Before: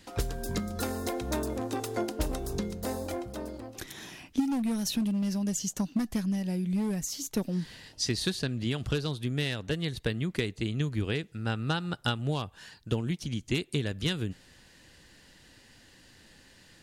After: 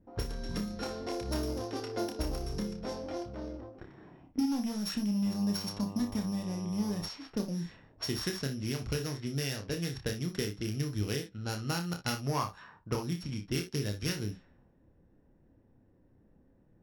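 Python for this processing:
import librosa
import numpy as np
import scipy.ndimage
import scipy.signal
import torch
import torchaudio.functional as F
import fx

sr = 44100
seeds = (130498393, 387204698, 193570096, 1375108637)

p1 = np.r_[np.sort(x[:len(x) // 8 * 8].reshape(-1, 8), axis=1).ravel(), x[len(x) // 8 * 8:]]
p2 = p1 + fx.room_early_taps(p1, sr, ms=(29, 59, 75), db=(-5.5, -11.5, -17.5), dry=0)
p3 = fx.dmg_buzz(p2, sr, base_hz=100.0, harmonics=12, level_db=-41.0, tilt_db=-4, odd_only=False, at=(5.25, 7.07), fade=0.02)
p4 = fx.peak_eq(p3, sr, hz=1100.0, db=12.0, octaves=0.97, at=(12.26, 13.03))
p5 = fx.env_lowpass(p4, sr, base_hz=450.0, full_db=-26.0)
y = p5 * 10.0 ** (-4.5 / 20.0)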